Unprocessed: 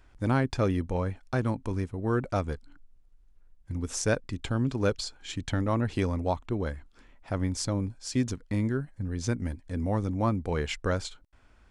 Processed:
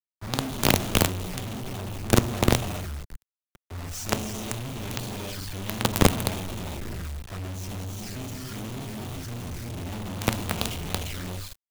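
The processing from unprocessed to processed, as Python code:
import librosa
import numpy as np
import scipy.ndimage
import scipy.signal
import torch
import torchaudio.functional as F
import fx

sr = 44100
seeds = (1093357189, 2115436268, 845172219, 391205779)

y = fx.halfwave_hold(x, sr)
y = fx.peak_eq(y, sr, hz=500.0, db=-14.0, octaves=0.29)
y = fx.hum_notches(y, sr, base_hz=50, count=6)
y = fx.room_flutter(y, sr, wall_m=7.2, rt60_s=0.35)
y = fx.rev_gated(y, sr, seeds[0], gate_ms=430, shape='rising', drr_db=-0.5)
y = fx.env_flanger(y, sr, rest_ms=6.6, full_db=-20.0)
y = fx.comb_fb(y, sr, f0_hz=56.0, decay_s=0.45, harmonics='odd', damping=0.0, mix_pct=50, at=(7.5, 9.78))
y = fx.quant_companded(y, sr, bits=2)
y = fx.band_widen(y, sr, depth_pct=40)
y = F.gain(torch.from_numpy(y), -6.5).numpy()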